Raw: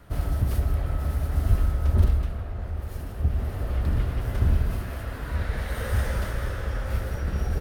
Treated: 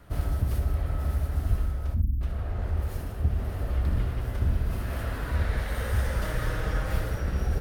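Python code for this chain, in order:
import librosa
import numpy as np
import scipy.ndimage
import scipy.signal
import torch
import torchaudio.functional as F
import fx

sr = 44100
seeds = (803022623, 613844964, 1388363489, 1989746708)

p1 = fx.spec_erase(x, sr, start_s=1.95, length_s=0.26, low_hz=340.0, high_hz=12000.0)
p2 = fx.comb(p1, sr, ms=6.4, depth=0.53, at=(6.21, 7.1))
p3 = fx.rider(p2, sr, range_db=5, speed_s=0.5)
p4 = p3 + fx.room_early_taps(p3, sr, ms=(62, 78), db=(-12.5, -14.5), dry=0)
y = p4 * librosa.db_to_amplitude(-2.5)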